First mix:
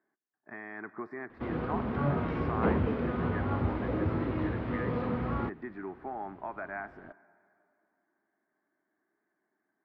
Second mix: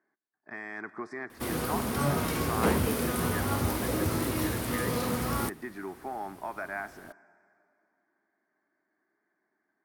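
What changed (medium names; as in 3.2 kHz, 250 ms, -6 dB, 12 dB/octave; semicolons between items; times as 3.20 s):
background: remove distance through air 180 m; master: remove distance through air 470 m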